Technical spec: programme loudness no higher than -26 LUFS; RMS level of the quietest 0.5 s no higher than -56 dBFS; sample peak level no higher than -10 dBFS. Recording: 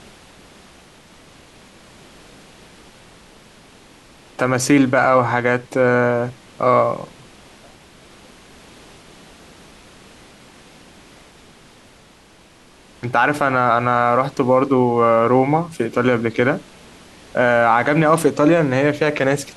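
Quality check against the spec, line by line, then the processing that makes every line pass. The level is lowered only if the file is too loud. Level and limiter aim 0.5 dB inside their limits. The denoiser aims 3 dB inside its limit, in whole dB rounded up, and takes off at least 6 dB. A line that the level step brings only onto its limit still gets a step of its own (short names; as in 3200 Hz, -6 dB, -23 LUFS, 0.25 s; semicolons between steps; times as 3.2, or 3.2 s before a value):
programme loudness -17.0 LUFS: fail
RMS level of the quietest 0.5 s -49 dBFS: fail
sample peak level -3.0 dBFS: fail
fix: gain -9.5 dB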